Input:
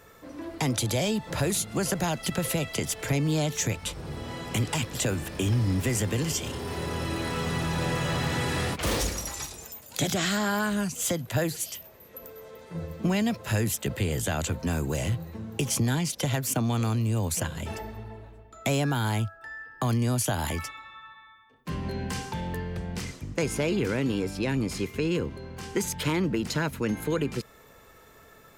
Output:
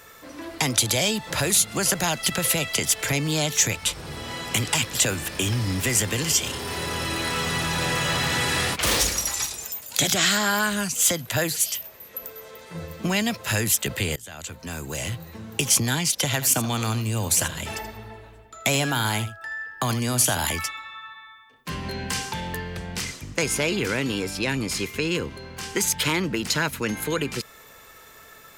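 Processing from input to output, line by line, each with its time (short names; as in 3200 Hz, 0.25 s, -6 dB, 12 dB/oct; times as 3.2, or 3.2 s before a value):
14.16–15.53 fade in, from -23.5 dB
16.31–20.47 echo 80 ms -13 dB
whole clip: tilt shelf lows -5.5 dB; gain +4.5 dB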